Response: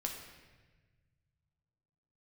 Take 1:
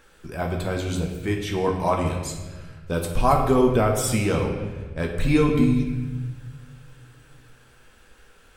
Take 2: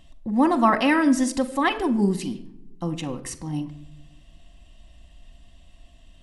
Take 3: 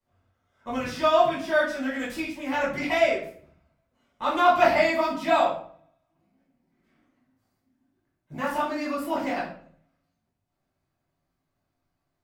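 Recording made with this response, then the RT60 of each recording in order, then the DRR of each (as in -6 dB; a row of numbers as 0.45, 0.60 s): 1; 1.3, 0.70, 0.55 s; 0.5, 6.5, -7.0 dB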